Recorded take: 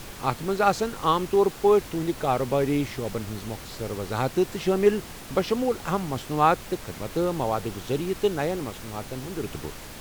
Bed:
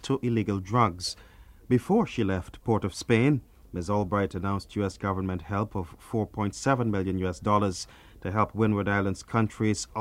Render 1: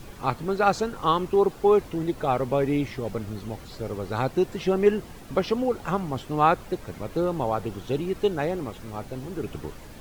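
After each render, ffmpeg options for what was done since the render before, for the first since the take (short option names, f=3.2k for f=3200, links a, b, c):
-af "afftdn=nr=9:nf=-41"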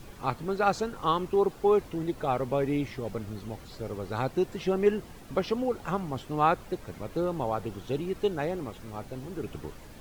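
-af "volume=-4dB"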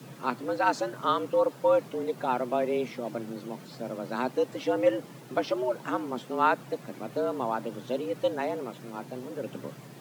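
-af "afreqshift=120"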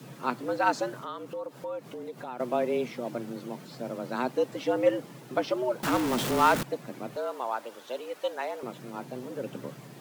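-filter_complex "[0:a]asettb=1/sr,asplit=3[a][b][c];[a]atrim=end=0.994[d];[b]atrim=start=0.99:end=2.4,asetpts=PTS-STARTPTS,afade=t=in:d=0.004:c=qsin,afade=t=out:st=1.406:d=0.004:c=qsin,acompressor=threshold=-39dB:ratio=2.5:attack=3.2:release=140:knee=1:detection=peak[e];[c]atrim=start=2.396[f];[d][e]acrossfade=d=0.004:c1=hsin:c2=qsin[g];[g][f]acrossfade=d=0.004:c1=qsin:c2=hsin,asettb=1/sr,asplit=3[h][i][j];[h]atrim=end=5.834[k];[i]atrim=start=5.83:end=6.63,asetpts=PTS-STARTPTS,afade=t=in:d=0.004:c=qsin,afade=t=out:st=0.796:d=0.004:c=qsin,aeval=exprs='val(0)+0.5*0.0531*sgn(val(0))':c=same[l];[j]atrim=start=6.626[m];[k][l]acrossfade=d=0.004:c1=hsin:c2=qsin[n];[n][m]acrossfade=d=0.004:c1=qsin:c2=hsin,asettb=1/sr,asplit=3[o][p][q];[o]atrim=end=7.164[r];[p]atrim=start=7.16:end=8.63,asetpts=PTS-STARTPTS,afade=t=in:d=0.004:c=qsin,afade=t=out:st=1.466:d=0.004:c=qsin,highpass=590[s];[q]atrim=start=8.626[t];[r][s]acrossfade=d=0.004:c1=hsin:c2=qsin[u];[u][t]acrossfade=d=0.004:c1=qsin:c2=hsin"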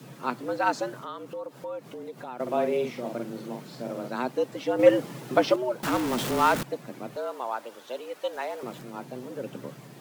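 -filter_complex "[0:a]asettb=1/sr,asplit=3[a][b][c];[a]atrim=end=2.424[d];[b]atrim=start=2.42:end=4.08,asetpts=PTS-STARTPTS,afade=t=in:d=0.004:c=qsin,afade=t=out:st=1.656:d=0.004:c=qsin,asplit=2[e][f];[f]adelay=47,volume=-4.5dB[g];[e][g]amix=inputs=2:normalize=0,atrim=end_sample=73206[h];[c]atrim=start=4.076[i];[d][h]acrossfade=d=0.004:c1=hsin:c2=qsin[j];[j][i]acrossfade=d=0.004:c1=qsin:c2=hsin,asettb=1/sr,asplit=3[k][l][m];[k]atrim=end=4.794[n];[l]atrim=start=4.79:end=5.56,asetpts=PTS-STARTPTS,afade=t=in:d=0.004:c=qsin,afade=t=out:st=0.766:d=0.004:c=qsin,acontrast=76[o];[m]atrim=start=5.556[p];[n][o]acrossfade=d=0.004:c1=hsin:c2=qsin[q];[q][p]acrossfade=d=0.004:c1=qsin:c2=hsin,asettb=1/sr,asplit=3[r][s][t];[r]atrim=end=8.334[u];[s]atrim=start=8.33:end=8.83,asetpts=PTS-STARTPTS,afade=t=in:d=0.004:c=qsin,afade=t=out:st=0.496:d=0.004:c=qsin,aeval=exprs='val(0)+0.5*0.00473*sgn(val(0))':c=same[v];[t]atrim=start=8.826[w];[u][v]acrossfade=d=0.004:c1=hsin:c2=qsin[x];[x][w]acrossfade=d=0.004:c1=qsin:c2=hsin"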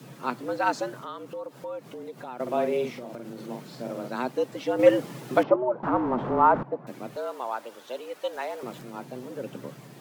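-filter_complex "[0:a]asettb=1/sr,asplit=3[a][b][c];[a]atrim=end=2.934[d];[b]atrim=start=2.93:end=3.49,asetpts=PTS-STARTPTS,afade=t=in:d=0.004:c=qsin,afade=t=out:st=0.556:d=0.004:c=qsin,acompressor=threshold=-34dB:ratio=6:attack=3.2:release=140:knee=1:detection=peak[e];[c]atrim=start=3.486[f];[d][e]acrossfade=d=0.004:c1=hsin:c2=qsin[g];[g][f]acrossfade=d=0.004:c1=qsin:c2=hsin,asettb=1/sr,asplit=3[h][i][j];[h]atrim=end=5.434[k];[i]atrim=start=5.43:end=6.87,asetpts=PTS-STARTPTS,afade=t=in:d=0.004:c=qsin,afade=t=out:st=1.436:d=0.004:c=qsin,lowpass=f=1k:t=q:w=1.6[l];[j]atrim=start=6.866[m];[k][l]acrossfade=d=0.004:c1=hsin:c2=qsin[n];[n][m]acrossfade=d=0.004:c1=qsin:c2=hsin"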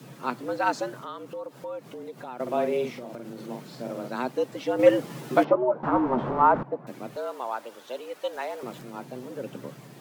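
-filter_complex "[0:a]asettb=1/sr,asplit=3[a][b][c];[a]atrim=end=5.094[d];[b]atrim=start=5.09:end=6.42,asetpts=PTS-STARTPTS,afade=t=in:d=0.004:c=qsin,afade=t=out:st=1.326:d=0.004:c=qsin,asplit=2[e][f];[f]adelay=13,volume=-5dB[g];[e][g]amix=inputs=2:normalize=0,atrim=end_sample=58653[h];[c]atrim=start=6.416[i];[d][h]acrossfade=d=0.004:c1=hsin:c2=qsin[j];[j][i]acrossfade=d=0.004:c1=qsin:c2=hsin"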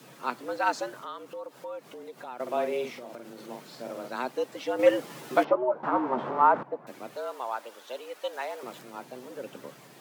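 -af "highpass=f=520:p=1"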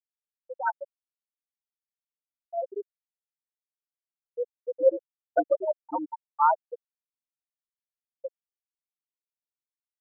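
-af "afftfilt=real='re*gte(hypot(re,im),0.355)':imag='im*gte(hypot(re,im),0.355)':win_size=1024:overlap=0.75,equalizer=f=1.6k:w=7.8:g=6.5"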